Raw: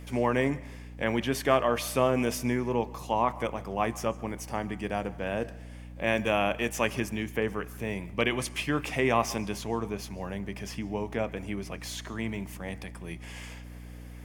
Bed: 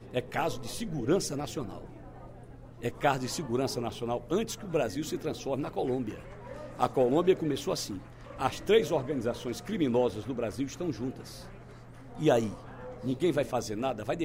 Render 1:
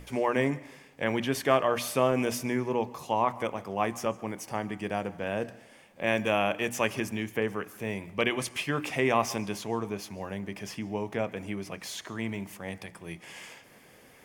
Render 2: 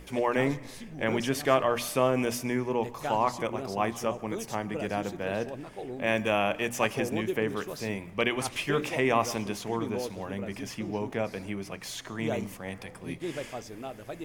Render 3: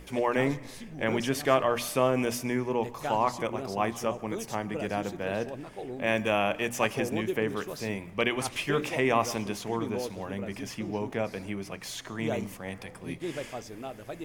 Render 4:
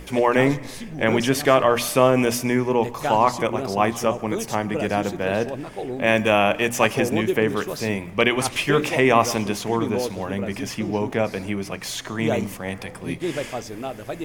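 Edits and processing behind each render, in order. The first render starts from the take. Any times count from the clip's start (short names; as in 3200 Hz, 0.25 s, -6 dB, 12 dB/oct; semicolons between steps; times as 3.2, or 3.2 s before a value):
notches 60/120/180/240/300 Hz
add bed -8 dB
nothing audible
gain +8.5 dB; limiter -2 dBFS, peak gain reduction 2.5 dB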